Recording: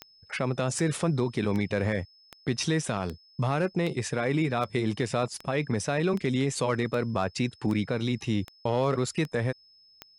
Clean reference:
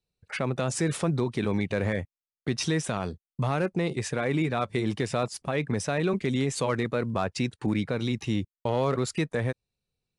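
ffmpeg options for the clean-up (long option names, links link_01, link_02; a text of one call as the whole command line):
ffmpeg -i in.wav -af "adeclick=threshold=4,bandreject=frequency=5200:width=30" out.wav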